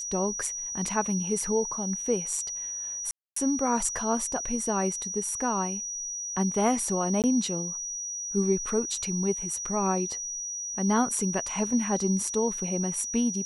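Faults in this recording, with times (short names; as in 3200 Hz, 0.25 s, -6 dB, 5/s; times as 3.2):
tone 5800 Hz -32 dBFS
3.11–3.36 gap 0.254 s
7.22–7.24 gap 18 ms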